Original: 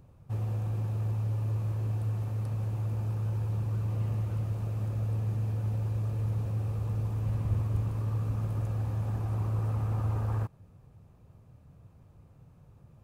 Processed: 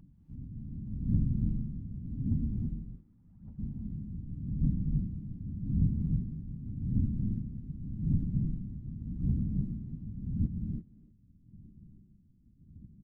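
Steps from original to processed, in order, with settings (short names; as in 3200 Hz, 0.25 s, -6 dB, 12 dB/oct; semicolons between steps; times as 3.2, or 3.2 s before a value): spectral contrast raised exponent 3.6; AGC gain up to 3 dB; limiter -27 dBFS, peak gain reduction 9.5 dB; rotary speaker horn 6.7 Hz; phaser 0.86 Hz, delay 4.8 ms, feedback 76%; 2.67–3.58 band-pass 1400 Hz -> 700 Hz, Q 1.6; whisperiser; 0.83–1.44 doubler 47 ms -4 dB; speakerphone echo 0.3 s, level -15 dB; non-linear reverb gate 0.36 s rising, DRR 1.5 dB; gain -6 dB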